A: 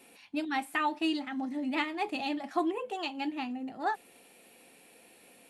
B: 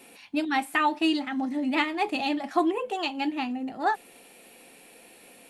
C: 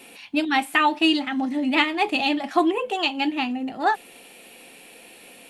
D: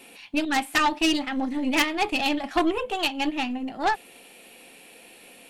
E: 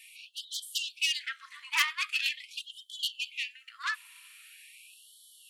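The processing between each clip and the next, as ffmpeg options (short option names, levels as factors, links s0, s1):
-af "asubboost=boost=2:cutoff=52,volume=2"
-af "equalizer=f=3000:t=o:w=0.8:g=5,volume=1.58"
-af "aeval=exprs='0.473*(cos(1*acos(clip(val(0)/0.473,-1,1)))-cos(1*PI/2))+0.211*(cos(4*acos(clip(val(0)/0.473,-1,1)))-cos(4*PI/2))+0.15*(cos(6*acos(clip(val(0)/0.473,-1,1)))-cos(6*PI/2))':c=same,volume=0.75"
-af "afftfilt=real='re*gte(b*sr/1024,900*pow(3000/900,0.5+0.5*sin(2*PI*0.43*pts/sr)))':imag='im*gte(b*sr/1024,900*pow(3000/900,0.5+0.5*sin(2*PI*0.43*pts/sr)))':win_size=1024:overlap=0.75,volume=0.75"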